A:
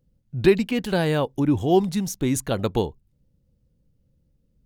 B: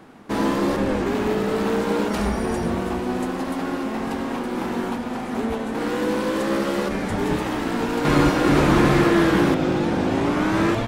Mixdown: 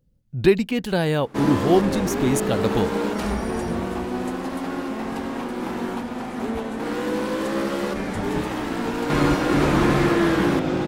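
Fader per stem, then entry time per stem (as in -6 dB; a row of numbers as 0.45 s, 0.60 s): +0.5 dB, -2.0 dB; 0.00 s, 1.05 s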